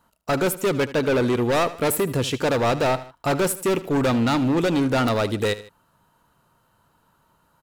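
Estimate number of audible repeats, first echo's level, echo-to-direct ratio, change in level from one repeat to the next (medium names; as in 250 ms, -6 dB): 2, -16.0 dB, -15.0 dB, -6.5 dB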